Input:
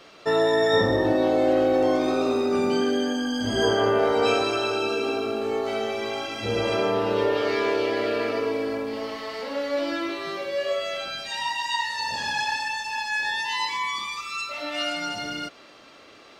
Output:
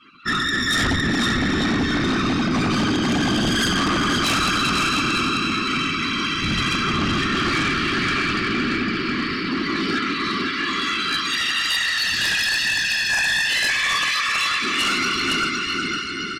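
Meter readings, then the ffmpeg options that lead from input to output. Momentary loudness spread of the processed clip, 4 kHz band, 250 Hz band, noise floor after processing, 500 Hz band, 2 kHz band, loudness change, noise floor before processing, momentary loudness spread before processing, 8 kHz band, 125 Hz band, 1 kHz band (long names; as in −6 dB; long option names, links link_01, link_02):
4 LU, +9.5 dB, +5.5 dB, −26 dBFS, −9.0 dB, +9.5 dB, +4.5 dB, −49 dBFS, 9 LU, +11.5 dB, +10.0 dB, +3.0 dB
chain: -af "afftfilt=real='re*(1-between(b*sr/4096,310,1100))':imag='im*(1-between(b*sr/4096,310,1100))':win_size=4096:overlap=0.75,afftdn=noise_reduction=26:noise_floor=-46,afftfilt=real='hypot(re,im)*cos(2*PI*random(0))':imag='hypot(re,im)*sin(2*PI*random(1))':win_size=512:overlap=0.75,aecho=1:1:510|892.5|1179|1395|1556:0.631|0.398|0.251|0.158|0.1,aeval=exprs='0.119*sin(PI/2*3.16*val(0)/0.119)':channel_layout=same,volume=2dB"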